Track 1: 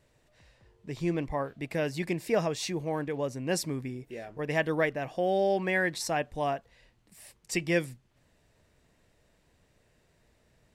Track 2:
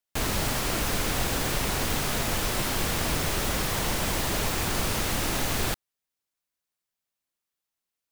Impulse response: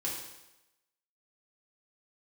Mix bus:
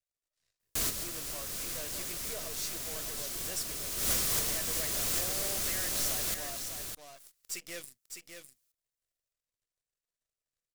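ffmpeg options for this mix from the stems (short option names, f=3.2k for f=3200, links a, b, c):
-filter_complex "[0:a]equalizer=f=210:w=1.2:g=-15,asoftclip=type=tanh:threshold=-30dB,aeval=exprs='0.0316*(cos(1*acos(clip(val(0)/0.0316,-1,1)))-cos(1*PI/2))+0.00501*(cos(3*acos(clip(val(0)/0.0316,-1,1)))-cos(3*PI/2))+0.002*(cos(5*acos(clip(val(0)/0.0316,-1,1)))-cos(5*PI/2))+0.00631*(cos(6*acos(clip(val(0)/0.0316,-1,1)))-cos(6*PI/2))+0.00355*(cos(7*acos(clip(val(0)/0.0316,-1,1)))-cos(7*PI/2))':c=same,volume=-9.5dB,asplit=3[a][b][c];[b]volume=-6.5dB[d];[1:a]adelay=600,volume=-2dB,afade=t=in:st=3.96:d=0.21:silence=0.421697,asplit=2[e][f];[f]volume=-17.5dB[g];[c]apad=whole_len=384497[h];[e][h]sidechaincompress=threshold=-56dB:ratio=3:attack=16:release=599[i];[d][g]amix=inputs=2:normalize=0,aecho=0:1:606:1[j];[a][i][j]amix=inputs=3:normalize=0,bass=f=250:g=-2,treble=f=4k:g=13,acrusher=bits=3:mode=log:mix=0:aa=0.000001,equalizer=f=860:t=o:w=0.22:g=-9"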